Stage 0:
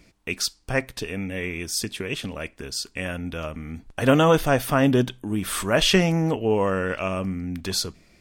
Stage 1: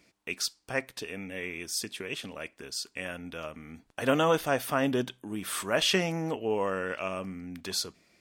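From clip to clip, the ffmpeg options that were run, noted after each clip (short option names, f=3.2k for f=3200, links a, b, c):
-af "highpass=f=310:p=1,volume=-5.5dB"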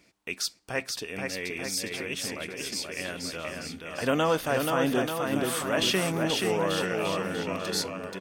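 -filter_complex "[0:a]asplit=2[a][b];[b]alimiter=limit=-21dB:level=0:latency=1,volume=-2dB[c];[a][c]amix=inputs=2:normalize=0,aecho=1:1:480|888|1235|1530|1780:0.631|0.398|0.251|0.158|0.1,volume=-3.5dB"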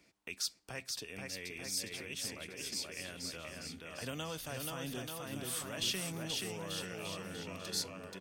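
-filter_complex "[0:a]acrossover=split=140|3000[a][b][c];[b]acompressor=threshold=-43dB:ratio=2.5[d];[a][d][c]amix=inputs=3:normalize=0,volume=-5.5dB"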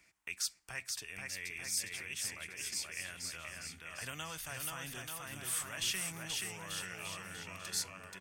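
-af "equalizer=f=125:t=o:w=1:g=-3,equalizer=f=250:t=o:w=1:g=-10,equalizer=f=500:t=o:w=1:g=-9,equalizer=f=2k:t=o:w=1:g=5,equalizer=f=4k:t=o:w=1:g=-6,equalizer=f=8k:t=o:w=1:g=4,volume=1dB"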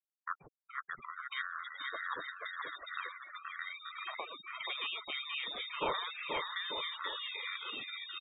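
-filter_complex "[0:a]afftfilt=real='re*gte(hypot(re,im),0.0112)':imag='im*gte(hypot(re,im),0.0112)':win_size=1024:overlap=0.75,lowpass=f=3.2k:t=q:w=0.5098,lowpass=f=3.2k:t=q:w=0.6013,lowpass=f=3.2k:t=q:w=0.9,lowpass=f=3.2k:t=q:w=2.563,afreqshift=-3800,acrossover=split=1600[a][b];[b]adelay=620[c];[a][c]amix=inputs=2:normalize=0,volume=8dB"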